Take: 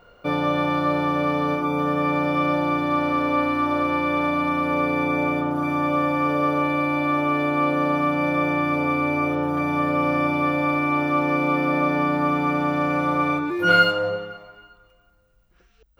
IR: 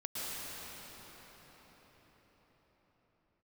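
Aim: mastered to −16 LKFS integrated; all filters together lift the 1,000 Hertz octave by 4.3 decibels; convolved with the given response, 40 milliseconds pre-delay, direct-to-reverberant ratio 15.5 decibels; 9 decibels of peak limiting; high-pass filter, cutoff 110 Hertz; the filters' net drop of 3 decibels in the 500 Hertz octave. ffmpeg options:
-filter_complex "[0:a]highpass=110,equalizer=frequency=500:width_type=o:gain=-5.5,equalizer=frequency=1000:width_type=o:gain=6.5,alimiter=limit=-12.5dB:level=0:latency=1,asplit=2[link_01][link_02];[1:a]atrim=start_sample=2205,adelay=40[link_03];[link_02][link_03]afir=irnorm=-1:irlink=0,volume=-19.5dB[link_04];[link_01][link_04]amix=inputs=2:normalize=0,volume=4.5dB"

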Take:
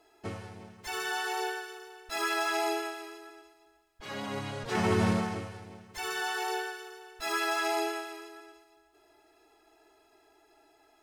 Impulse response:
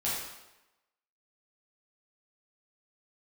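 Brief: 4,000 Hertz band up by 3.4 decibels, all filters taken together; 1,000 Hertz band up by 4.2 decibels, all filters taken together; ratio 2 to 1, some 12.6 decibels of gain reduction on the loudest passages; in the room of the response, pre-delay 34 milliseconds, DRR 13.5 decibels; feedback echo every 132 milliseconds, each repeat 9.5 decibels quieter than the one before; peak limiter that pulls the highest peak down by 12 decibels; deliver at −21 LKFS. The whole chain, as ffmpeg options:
-filter_complex "[0:a]equalizer=frequency=1000:width_type=o:gain=5.5,equalizer=frequency=4000:width_type=o:gain=4,acompressor=threshold=-45dB:ratio=2,alimiter=level_in=13dB:limit=-24dB:level=0:latency=1,volume=-13dB,aecho=1:1:132|264|396|528:0.335|0.111|0.0365|0.012,asplit=2[link_01][link_02];[1:a]atrim=start_sample=2205,adelay=34[link_03];[link_02][link_03]afir=irnorm=-1:irlink=0,volume=-20.5dB[link_04];[link_01][link_04]amix=inputs=2:normalize=0,volume=24dB"

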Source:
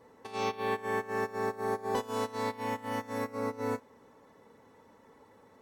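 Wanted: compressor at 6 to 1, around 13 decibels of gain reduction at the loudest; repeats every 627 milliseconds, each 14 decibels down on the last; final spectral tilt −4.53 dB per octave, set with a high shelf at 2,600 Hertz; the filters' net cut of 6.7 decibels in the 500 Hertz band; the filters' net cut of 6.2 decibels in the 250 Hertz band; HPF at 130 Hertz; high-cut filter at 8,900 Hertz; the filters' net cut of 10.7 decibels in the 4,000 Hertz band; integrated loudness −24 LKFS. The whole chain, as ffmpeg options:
ffmpeg -i in.wav -af "highpass=130,lowpass=8900,equalizer=frequency=250:width_type=o:gain=-5,equalizer=frequency=500:width_type=o:gain=-6,highshelf=frequency=2600:gain=-8.5,equalizer=frequency=4000:width_type=o:gain=-6.5,acompressor=threshold=-47dB:ratio=6,aecho=1:1:627|1254:0.2|0.0399,volume=26dB" out.wav

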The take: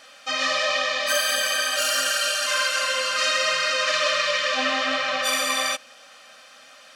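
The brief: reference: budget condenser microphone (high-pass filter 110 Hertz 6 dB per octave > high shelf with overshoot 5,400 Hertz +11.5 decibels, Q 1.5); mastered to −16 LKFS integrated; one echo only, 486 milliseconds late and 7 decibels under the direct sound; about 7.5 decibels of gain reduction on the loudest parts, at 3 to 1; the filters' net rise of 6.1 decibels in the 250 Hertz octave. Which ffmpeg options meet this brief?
ffmpeg -i in.wav -af "equalizer=frequency=250:width_type=o:gain=7,acompressor=threshold=-29dB:ratio=3,highpass=frequency=110:poles=1,highshelf=frequency=5400:width_type=q:width=1.5:gain=11.5,aecho=1:1:486:0.447,volume=8dB" out.wav

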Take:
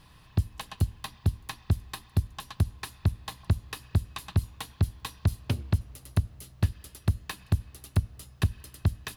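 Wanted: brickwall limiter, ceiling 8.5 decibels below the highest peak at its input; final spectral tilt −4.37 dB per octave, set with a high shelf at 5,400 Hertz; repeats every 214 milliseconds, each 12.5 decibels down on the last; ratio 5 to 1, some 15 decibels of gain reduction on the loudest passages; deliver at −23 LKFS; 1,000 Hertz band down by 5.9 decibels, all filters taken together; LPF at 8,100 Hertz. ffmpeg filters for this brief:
ffmpeg -i in.wav -af "lowpass=8100,equalizer=frequency=1000:width_type=o:gain=-7.5,highshelf=frequency=5400:gain=7.5,acompressor=threshold=-36dB:ratio=5,alimiter=level_in=7dB:limit=-24dB:level=0:latency=1,volume=-7dB,aecho=1:1:214|428|642:0.237|0.0569|0.0137,volume=24dB" out.wav

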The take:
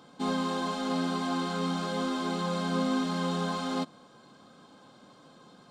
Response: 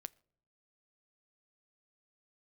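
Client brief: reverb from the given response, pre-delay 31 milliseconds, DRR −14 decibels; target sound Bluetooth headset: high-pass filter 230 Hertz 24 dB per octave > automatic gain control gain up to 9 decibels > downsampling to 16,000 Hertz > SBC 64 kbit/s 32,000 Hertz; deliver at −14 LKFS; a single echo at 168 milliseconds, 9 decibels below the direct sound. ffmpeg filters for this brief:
-filter_complex "[0:a]aecho=1:1:168:0.355,asplit=2[link_01][link_02];[1:a]atrim=start_sample=2205,adelay=31[link_03];[link_02][link_03]afir=irnorm=-1:irlink=0,volume=19dB[link_04];[link_01][link_04]amix=inputs=2:normalize=0,highpass=frequency=230:width=0.5412,highpass=frequency=230:width=1.3066,dynaudnorm=maxgain=9dB,aresample=16000,aresample=44100,volume=2.5dB" -ar 32000 -c:a sbc -b:a 64k

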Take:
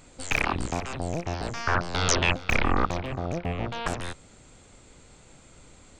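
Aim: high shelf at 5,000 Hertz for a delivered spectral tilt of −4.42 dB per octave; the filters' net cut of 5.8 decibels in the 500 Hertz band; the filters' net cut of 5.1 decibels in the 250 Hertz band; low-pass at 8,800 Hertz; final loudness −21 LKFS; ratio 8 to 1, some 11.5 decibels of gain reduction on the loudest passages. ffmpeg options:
ffmpeg -i in.wav -af "lowpass=8800,equalizer=frequency=250:width_type=o:gain=-5.5,equalizer=frequency=500:width_type=o:gain=-6,highshelf=frequency=5000:gain=-8.5,acompressor=threshold=-33dB:ratio=8,volume=17.5dB" out.wav

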